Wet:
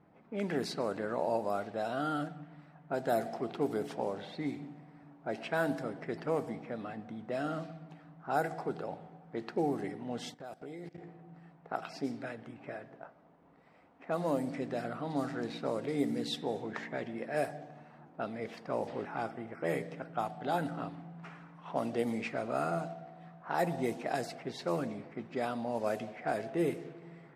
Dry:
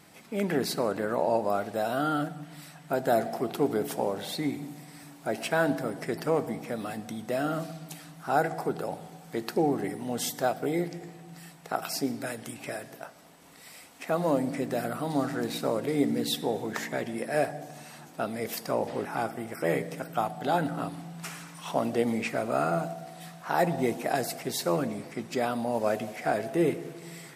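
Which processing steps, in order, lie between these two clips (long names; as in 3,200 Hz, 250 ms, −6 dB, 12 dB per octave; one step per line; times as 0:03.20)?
low-pass that shuts in the quiet parts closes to 1,000 Hz, open at −21.5 dBFS
0:10.34–0:10.98: output level in coarse steps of 19 dB
level −6 dB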